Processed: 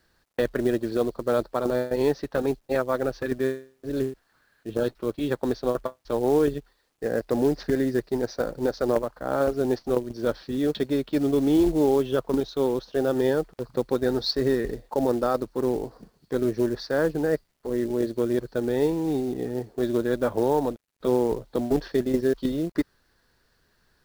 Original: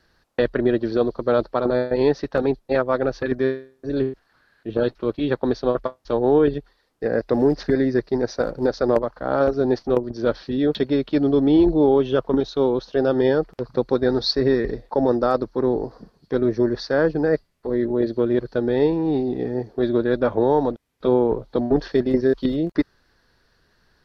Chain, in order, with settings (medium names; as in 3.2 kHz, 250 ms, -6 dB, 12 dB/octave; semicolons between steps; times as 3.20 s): companded quantiser 6-bit; trim -4.5 dB